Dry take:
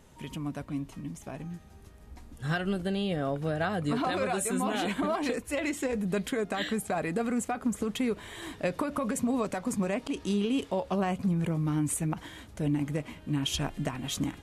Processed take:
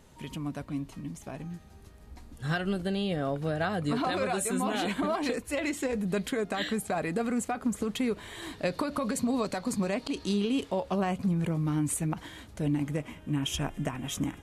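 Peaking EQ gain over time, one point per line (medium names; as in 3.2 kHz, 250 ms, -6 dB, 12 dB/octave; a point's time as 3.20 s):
peaking EQ 4.3 kHz 0.28 oct
8.37 s +3.5 dB
8.80 s +14 dB
10.20 s +14 dB
10.72 s +2.5 dB
12.81 s +2.5 dB
13.02 s -7 dB
13.52 s -14 dB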